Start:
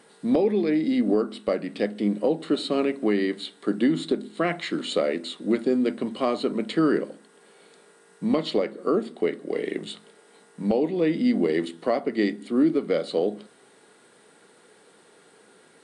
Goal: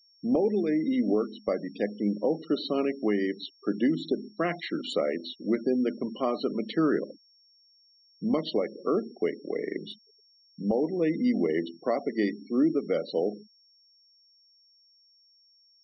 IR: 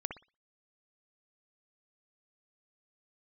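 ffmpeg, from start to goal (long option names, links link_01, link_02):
-af "afftfilt=real='re*gte(hypot(re,im),0.0251)':imag='im*gte(hypot(re,im),0.0251)':win_size=1024:overlap=0.75,aeval=exprs='val(0)+0.00158*sin(2*PI*5500*n/s)':channel_layout=same,bandreject=frequency=2300:width=23,volume=-3.5dB"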